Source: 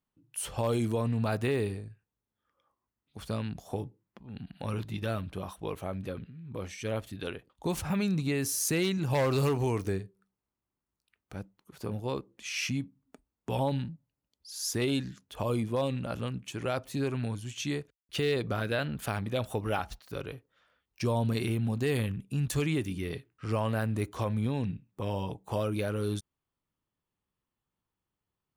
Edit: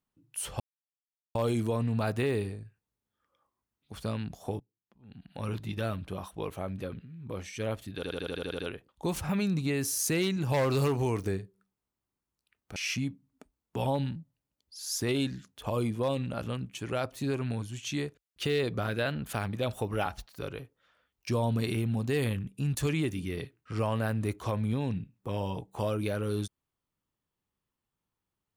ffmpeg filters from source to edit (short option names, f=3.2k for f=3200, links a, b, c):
-filter_complex "[0:a]asplit=12[a][b][c][d][e][f][g][h][i][j][k][l];[a]atrim=end=0.6,asetpts=PTS-STARTPTS,afade=t=out:st=0.596:d=0.004:c=hsin,apad=pad_dur=0.75[m];[b]atrim=start=0.6:end=3.85,asetpts=PTS-STARTPTS,afade=t=in:d=0.004:c=hsin,afade=t=out:st=3.246:d=0.004:c=hsin:silence=0.0841395[n];[c]atrim=start=3.85:end=7.282,asetpts=PTS-STARTPTS,afade=t=in:d=0.91:c=qua:silence=0.0841395[o];[d]atrim=start=7.198:end=7.282[p];[e]atrim=start=7.198:end=7.282[q];[f]atrim=start=7.198:end=7.282[r];[g]atrim=start=7.198:end=7.282[s];[h]atrim=start=7.198:end=7.282[t];[i]atrim=start=7.198:end=7.282[u];[j]atrim=start=7.198:end=7.282[v];[k]atrim=start=7.198:end=11.372[w];[l]atrim=start=12.488[x];[m][n][o]concat=n=3:v=0:a=1[y];[y][p]acrossfade=d=0.004:c1=hsin:c2=hsin[z];[z][q]acrossfade=d=0.004:c1=hsin:c2=hsin[aa];[aa][r]acrossfade=d=0.004:c1=hsin:c2=hsin[ab];[ab][s]acrossfade=d=0.004:c1=hsin:c2=hsin[ac];[ac][t]acrossfade=d=0.004:c1=hsin:c2=hsin[ad];[ad][u]acrossfade=d=0.004:c1=hsin:c2=hsin[ae];[ae][v]acrossfade=d=0.004:c1=hsin:c2=hsin[af];[af][w]acrossfade=d=0.004:c1=hsin:c2=hsin[ag];[ag][x]acrossfade=d=0.004:c1=hsin:c2=hsin"